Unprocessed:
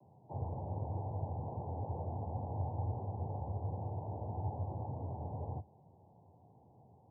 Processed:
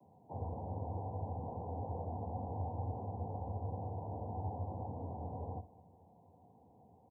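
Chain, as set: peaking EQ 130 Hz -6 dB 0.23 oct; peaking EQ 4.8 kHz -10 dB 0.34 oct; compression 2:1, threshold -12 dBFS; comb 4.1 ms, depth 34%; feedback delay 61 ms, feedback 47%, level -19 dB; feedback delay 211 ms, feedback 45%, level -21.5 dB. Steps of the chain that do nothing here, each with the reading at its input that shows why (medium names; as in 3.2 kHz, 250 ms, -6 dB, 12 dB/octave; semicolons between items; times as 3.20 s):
peaking EQ 4.8 kHz: input has nothing above 960 Hz; compression, threshold -12 dBFS: peak at its input -27.5 dBFS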